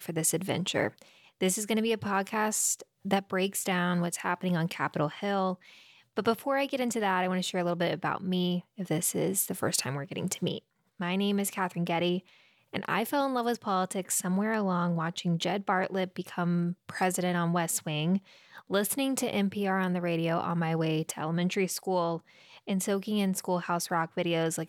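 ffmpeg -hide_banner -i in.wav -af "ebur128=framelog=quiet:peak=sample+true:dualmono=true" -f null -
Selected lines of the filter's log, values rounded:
Integrated loudness:
  I:         -26.9 LUFS
  Threshold: -37.1 LUFS
Loudness range:
  LRA:         1.5 LU
  Threshold: -47.1 LUFS
  LRA low:   -27.8 LUFS
  LRA high:  -26.4 LUFS
Sample peak:
  Peak:      -12.5 dBFS
True peak:
  Peak:      -12.4 dBFS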